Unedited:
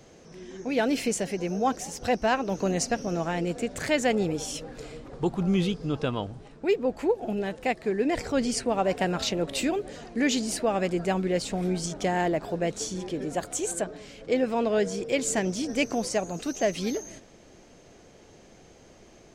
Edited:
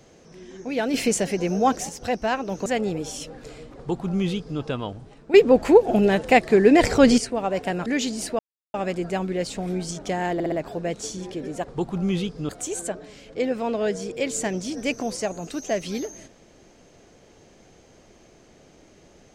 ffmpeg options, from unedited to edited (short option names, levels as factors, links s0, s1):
-filter_complex "[0:a]asplit=13[s0][s1][s2][s3][s4][s5][s6][s7][s8][s9][s10][s11][s12];[s0]atrim=end=0.942[s13];[s1]atrim=start=0.938:end=1.892,asetpts=PTS-STARTPTS,volume=1.88[s14];[s2]atrim=start=1.888:end=2.662[s15];[s3]atrim=start=3.998:end=6.682[s16];[s4]atrim=start=6.678:end=8.522,asetpts=PTS-STARTPTS,volume=3.55[s17];[s5]atrim=start=8.518:end=9.202[s18];[s6]atrim=start=10.158:end=10.69,asetpts=PTS-STARTPTS,afade=t=out:st=0.528:d=0.004:c=hsin,apad=pad_dur=0.35[s19];[s7]atrim=start=10.69:end=12.352,asetpts=PTS-STARTPTS,afade=t=in:d=0.004:c=hsin[s20];[s8]atrim=start=12.288:end=12.352[s21];[s9]atrim=start=12.288:end=12.352[s22];[s10]atrim=start=12.288:end=13.412[s23];[s11]atrim=start=5.088:end=5.942[s24];[s12]atrim=start=13.408[s25];[s13][s14]acrossfade=d=0.004:c1=hsin:c2=hsin[s26];[s26][s15]acrossfade=d=0.004:c1=hsin:c2=hsin[s27];[s27][s16]acrossfade=d=0.004:c1=hsin:c2=hsin[s28];[s28][s17]acrossfade=d=0.004:c1=hsin:c2=hsin[s29];[s29][s18]acrossfade=d=0.004:c1=hsin:c2=hsin[s30];[s19][s20]concat=n=2:v=0:a=1[s31];[s30][s31]acrossfade=d=0.004:c1=hsin:c2=hsin[s32];[s32][s21]acrossfade=d=0.004:c1=hsin:c2=hsin[s33];[s33][s22]acrossfade=d=0.004:c1=hsin:c2=hsin[s34];[s34][s23]acrossfade=d=0.004:c1=hsin:c2=hsin[s35];[s35][s24]acrossfade=d=0.004:c1=hsin:c2=hsin[s36];[s36][s25]acrossfade=d=0.004:c1=hsin:c2=hsin"